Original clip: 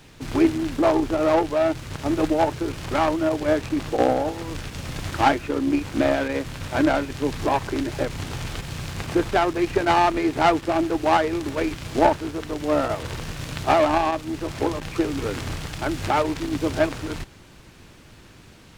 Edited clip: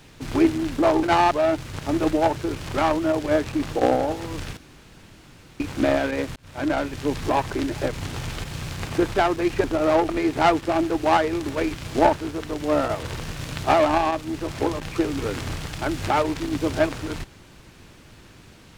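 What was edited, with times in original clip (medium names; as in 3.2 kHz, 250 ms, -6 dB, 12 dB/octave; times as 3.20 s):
1.03–1.48 s: swap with 9.81–10.09 s
4.74–5.77 s: room tone
6.53–7.32 s: fade in equal-power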